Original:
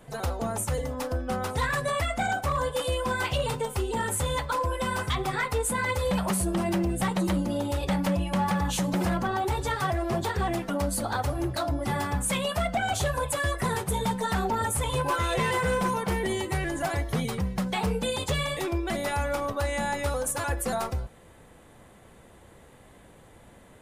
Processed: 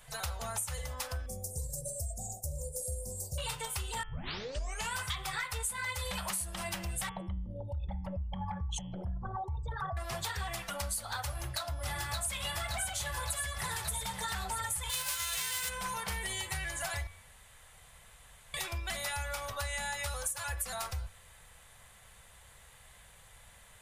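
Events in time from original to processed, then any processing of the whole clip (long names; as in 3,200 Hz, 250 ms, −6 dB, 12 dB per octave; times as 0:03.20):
0:01.26–0:03.38: inverse Chebyshev band-stop filter 1,100–3,400 Hz, stop band 50 dB
0:04.03: tape start 0.92 s
0:07.09–0:09.97: spectral envelope exaggerated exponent 3
0:11.26–0:12.32: delay throw 570 ms, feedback 70%, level −1 dB
0:14.89–0:15.68: spectral envelope flattened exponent 0.3
0:17.07–0:18.54: fill with room tone
whole clip: guitar amp tone stack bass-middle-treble 10-0-10; hum removal 87.73 Hz, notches 39; downward compressor, threshold −38 dBFS; level +5 dB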